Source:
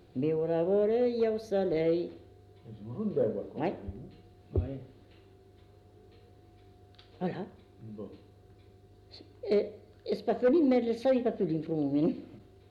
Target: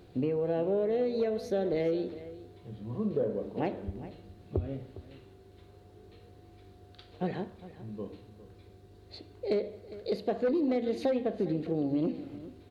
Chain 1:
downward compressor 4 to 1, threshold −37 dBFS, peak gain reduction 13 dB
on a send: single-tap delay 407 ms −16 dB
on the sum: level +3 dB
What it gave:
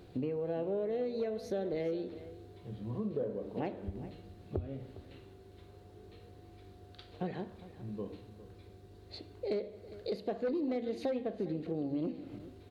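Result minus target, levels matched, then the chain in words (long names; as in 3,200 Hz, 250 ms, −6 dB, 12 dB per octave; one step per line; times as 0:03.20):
downward compressor: peak gain reduction +5.5 dB
downward compressor 4 to 1, threshold −29.5 dBFS, peak gain reduction 7.5 dB
on a send: single-tap delay 407 ms −16 dB
on the sum: level +3 dB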